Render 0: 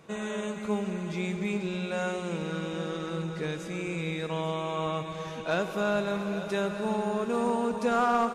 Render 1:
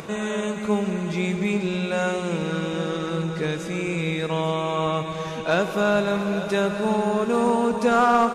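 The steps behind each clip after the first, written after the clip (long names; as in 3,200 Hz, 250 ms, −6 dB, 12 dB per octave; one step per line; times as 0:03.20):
upward compression, threshold −36 dBFS
level +7 dB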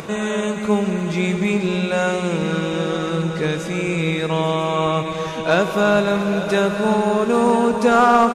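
single-tap delay 997 ms −13.5 dB
level +4.5 dB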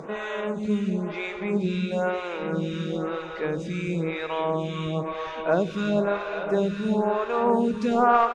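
high-frequency loss of the air 120 metres
phaser with staggered stages 1 Hz
level −3.5 dB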